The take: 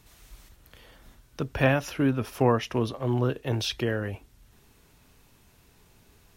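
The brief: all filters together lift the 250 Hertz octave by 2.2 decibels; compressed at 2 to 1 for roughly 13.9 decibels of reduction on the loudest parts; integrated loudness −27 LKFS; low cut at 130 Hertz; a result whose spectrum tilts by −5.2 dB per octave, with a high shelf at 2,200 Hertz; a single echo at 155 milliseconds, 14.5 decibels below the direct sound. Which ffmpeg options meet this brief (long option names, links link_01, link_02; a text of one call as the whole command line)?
ffmpeg -i in.wav -af "highpass=130,equalizer=frequency=250:width_type=o:gain=3,highshelf=frequency=2200:gain=-3.5,acompressor=threshold=-43dB:ratio=2,aecho=1:1:155:0.188,volume=12dB" out.wav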